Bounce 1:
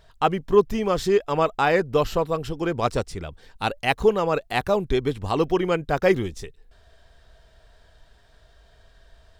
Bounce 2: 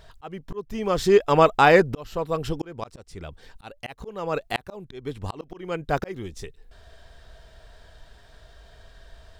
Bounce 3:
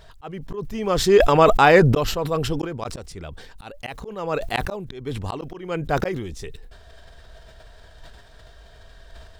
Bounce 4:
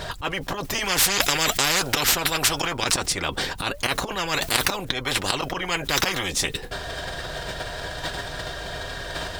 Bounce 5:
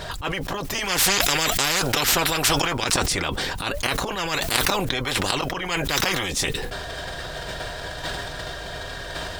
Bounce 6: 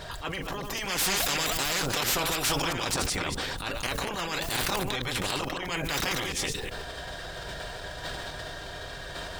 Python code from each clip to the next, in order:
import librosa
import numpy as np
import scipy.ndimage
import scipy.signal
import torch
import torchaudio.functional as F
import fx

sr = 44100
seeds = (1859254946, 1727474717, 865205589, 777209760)

y1 = fx.auto_swell(x, sr, attack_ms=763.0)
y1 = y1 * librosa.db_to_amplitude(5.0)
y2 = fx.sustainer(y1, sr, db_per_s=41.0)
y2 = y2 * librosa.db_to_amplitude(1.5)
y3 = fx.notch_comb(y2, sr, f0_hz=220.0)
y3 = fx.spectral_comp(y3, sr, ratio=10.0)
y3 = y3 * librosa.db_to_amplitude(1.0)
y4 = fx.sustainer(y3, sr, db_per_s=27.0)
y4 = y4 * librosa.db_to_amplitude(-1.0)
y5 = fx.reverse_delay(y4, sr, ms=124, wet_db=-5.0)
y5 = 10.0 ** (-12.0 / 20.0) * (np.abs((y5 / 10.0 ** (-12.0 / 20.0) + 3.0) % 4.0 - 2.0) - 1.0)
y5 = y5 * librosa.db_to_amplitude(-7.0)